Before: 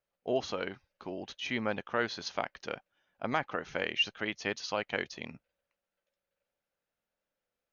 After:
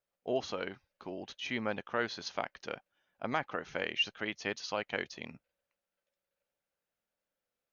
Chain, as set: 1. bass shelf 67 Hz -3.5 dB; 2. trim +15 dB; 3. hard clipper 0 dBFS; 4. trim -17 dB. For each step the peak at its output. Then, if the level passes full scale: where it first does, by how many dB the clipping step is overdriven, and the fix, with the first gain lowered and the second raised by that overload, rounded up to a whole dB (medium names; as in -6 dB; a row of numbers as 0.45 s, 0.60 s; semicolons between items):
-16.5 dBFS, -1.5 dBFS, -1.5 dBFS, -18.5 dBFS; nothing clips